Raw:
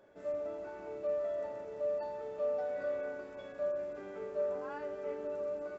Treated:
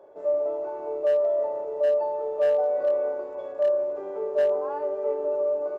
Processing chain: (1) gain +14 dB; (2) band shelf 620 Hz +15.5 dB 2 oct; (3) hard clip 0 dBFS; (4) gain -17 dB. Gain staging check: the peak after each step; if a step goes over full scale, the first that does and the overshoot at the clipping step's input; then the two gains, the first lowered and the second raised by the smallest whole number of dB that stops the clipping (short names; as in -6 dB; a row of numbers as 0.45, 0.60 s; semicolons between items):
-11.5, +4.0, 0.0, -17.0 dBFS; step 2, 4.0 dB; step 1 +10 dB, step 4 -13 dB